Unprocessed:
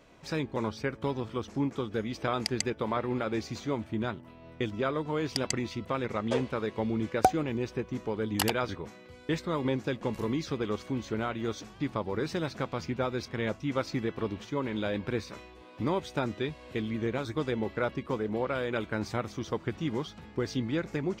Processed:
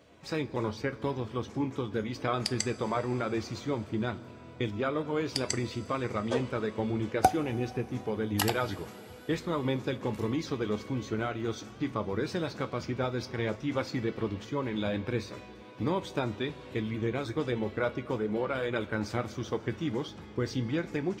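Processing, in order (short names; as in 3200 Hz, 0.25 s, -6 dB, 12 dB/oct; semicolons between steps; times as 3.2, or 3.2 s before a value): bin magnitudes rounded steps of 15 dB; HPF 60 Hz; two-slope reverb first 0.21 s, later 4.9 s, from -20 dB, DRR 9.5 dB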